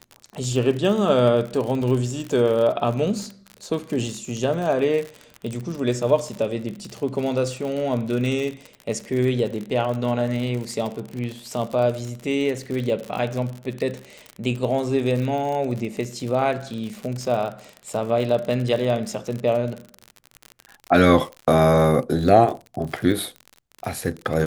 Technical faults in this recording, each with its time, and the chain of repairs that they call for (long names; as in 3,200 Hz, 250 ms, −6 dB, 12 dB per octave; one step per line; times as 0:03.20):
surface crackle 54 per second −27 dBFS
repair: click removal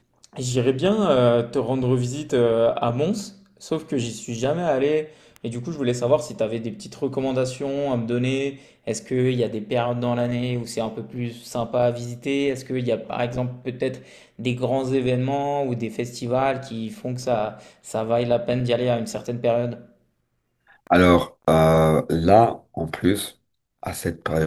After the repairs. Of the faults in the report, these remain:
none of them is left